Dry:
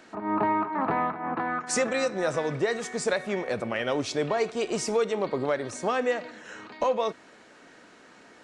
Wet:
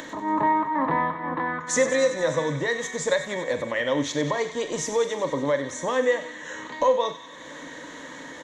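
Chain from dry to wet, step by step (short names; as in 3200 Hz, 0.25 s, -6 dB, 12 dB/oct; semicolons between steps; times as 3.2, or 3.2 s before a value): ripple EQ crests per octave 1.1, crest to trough 12 dB; upward compressor, threshold -29 dBFS; doubler 43 ms -12 dB; thin delay 94 ms, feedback 72%, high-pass 1500 Hz, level -10.5 dB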